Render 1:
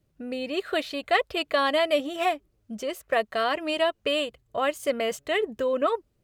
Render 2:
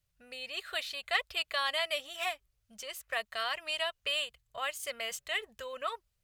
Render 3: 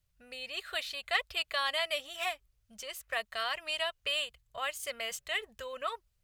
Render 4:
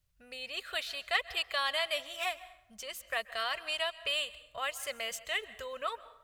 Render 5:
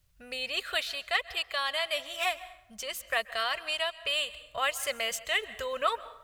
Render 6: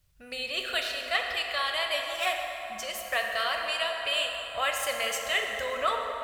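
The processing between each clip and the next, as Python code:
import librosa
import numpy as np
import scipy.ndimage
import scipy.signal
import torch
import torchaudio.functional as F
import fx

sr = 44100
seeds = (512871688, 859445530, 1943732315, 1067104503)

y1 = fx.tone_stack(x, sr, knobs='10-0-10')
y2 = fx.low_shelf(y1, sr, hz=85.0, db=6.0)
y3 = fx.rev_plate(y2, sr, seeds[0], rt60_s=0.84, hf_ratio=0.65, predelay_ms=120, drr_db=16.5)
y4 = fx.rider(y3, sr, range_db=4, speed_s=0.5)
y4 = F.gain(torch.from_numpy(y4), 4.0).numpy()
y5 = fx.rev_plate(y4, sr, seeds[1], rt60_s=4.3, hf_ratio=0.45, predelay_ms=0, drr_db=1.0)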